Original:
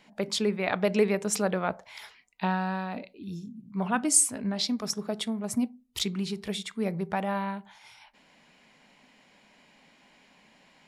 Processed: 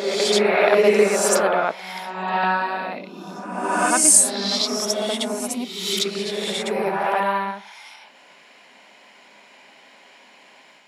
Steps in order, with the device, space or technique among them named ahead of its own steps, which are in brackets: ghost voice (reverse; reverb RT60 1.5 s, pre-delay 56 ms, DRR -3.5 dB; reverse; HPF 390 Hz 12 dB/oct); gain +6.5 dB

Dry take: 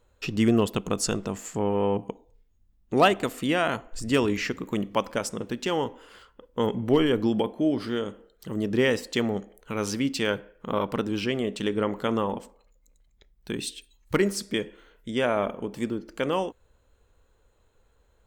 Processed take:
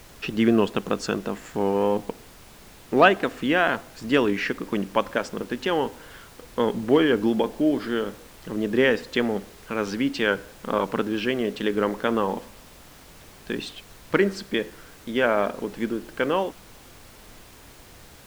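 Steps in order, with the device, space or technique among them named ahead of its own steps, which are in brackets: horn gramophone (BPF 180–3700 Hz; bell 1600 Hz +7 dB 0.21 oct; wow and flutter; pink noise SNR 22 dB); gain +3 dB

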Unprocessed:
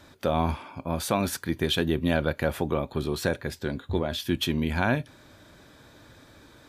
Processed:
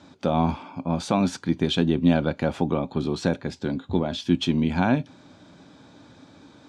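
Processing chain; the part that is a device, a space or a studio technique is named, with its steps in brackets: car door speaker (speaker cabinet 86–7300 Hz, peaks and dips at 180 Hz +9 dB, 270 Hz +8 dB, 810 Hz +5 dB, 1800 Hz -6 dB)

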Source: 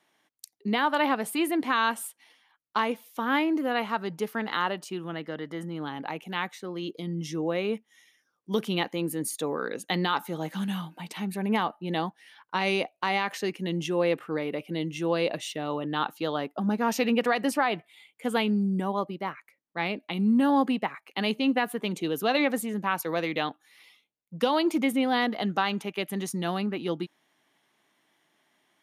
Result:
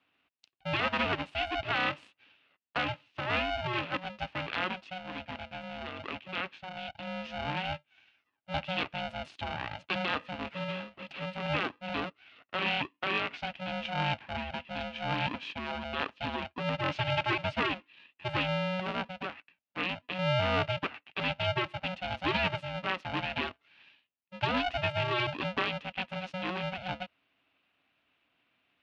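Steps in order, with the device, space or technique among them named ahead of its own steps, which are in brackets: ring modulator pedal into a guitar cabinet (polarity switched at an audio rate 370 Hz; speaker cabinet 91–3900 Hz, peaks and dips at 280 Hz +8 dB, 480 Hz -3 dB, 2700 Hz +9 dB); gain -6 dB

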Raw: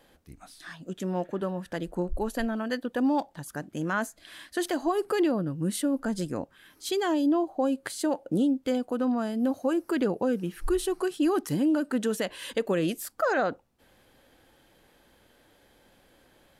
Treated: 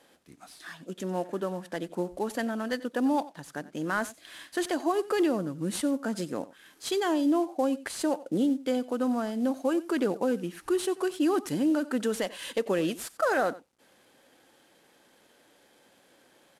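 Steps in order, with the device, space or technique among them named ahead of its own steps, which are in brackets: 3.1–3.92 LPF 7100 Hz 12 dB/oct; early wireless headset (HPF 200 Hz 12 dB/oct; CVSD 64 kbps); echo 91 ms -18.5 dB

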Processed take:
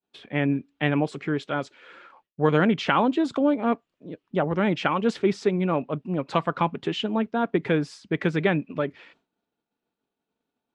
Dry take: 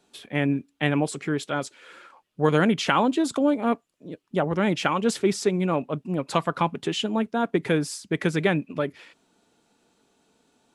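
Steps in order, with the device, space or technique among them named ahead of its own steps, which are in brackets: hearing-loss simulation (LPF 3500 Hz 12 dB/oct; expander -54 dBFS)

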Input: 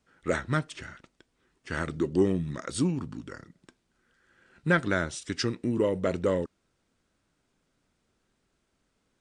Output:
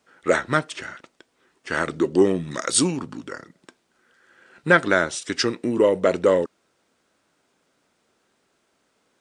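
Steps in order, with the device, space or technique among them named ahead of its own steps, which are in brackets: 2.51–2.97 high shelf 2900 Hz +10 dB; filter by subtraction (in parallel: LPF 570 Hz 12 dB/oct + phase invert); on the sum: gain +8 dB

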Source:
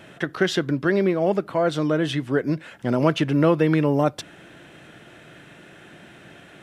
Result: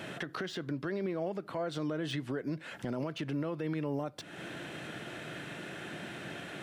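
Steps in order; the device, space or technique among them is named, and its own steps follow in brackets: broadcast voice chain (HPF 92 Hz; de-esser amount 75%; compressor 5:1, threshold -35 dBFS, peak gain reduction 19.5 dB; bell 4400 Hz +3 dB 0.28 oct; limiter -30 dBFS, peak gain reduction 8.5 dB); gain +3.5 dB

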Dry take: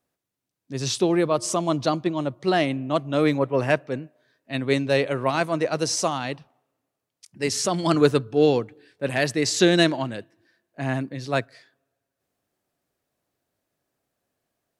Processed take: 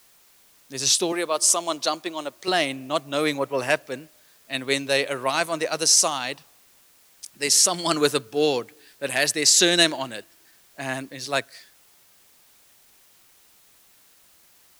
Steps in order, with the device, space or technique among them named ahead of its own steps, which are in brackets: 1.12–2.48 Bessel high-pass 350 Hz, order 2; turntable without a phono preamp (RIAA curve recording; white noise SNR 31 dB)

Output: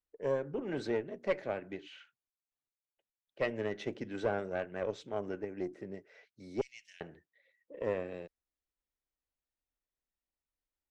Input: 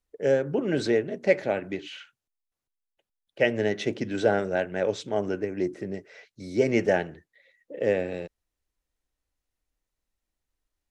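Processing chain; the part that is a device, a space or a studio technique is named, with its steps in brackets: 6.61–7.01 inverse Chebyshev high-pass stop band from 1100 Hz, stop band 50 dB; tube preamp driven hard (tube stage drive 14 dB, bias 0.55; low shelf 180 Hz -5.5 dB; high shelf 4600 Hz -9 dB); gain -6.5 dB

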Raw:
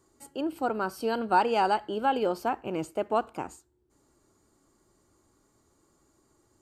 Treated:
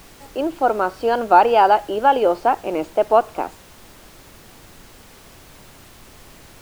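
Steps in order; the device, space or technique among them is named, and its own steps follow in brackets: horn gramophone (BPF 300–3400 Hz; bell 640 Hz +5.5 dB; wow and flutter; pink noise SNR 24 dB); gain +8.5 dB

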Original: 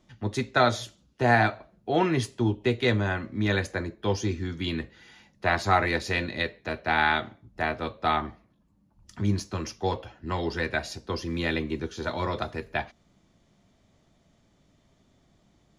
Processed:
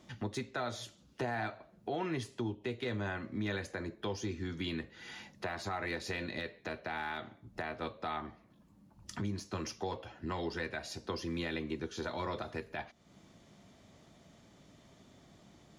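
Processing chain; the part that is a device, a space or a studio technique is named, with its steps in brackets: podcast mastering chain (HPF 110 Hz 6 dB/oct; de-esser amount 80%; compressor 2.5:1, threshold -46 dBFS, peak gain reduction 19 dB; limiter -32 dBFS, peak gain reduction 7.5 dB; gain +6 dB; MP3 96 kbps 48000 Hz)

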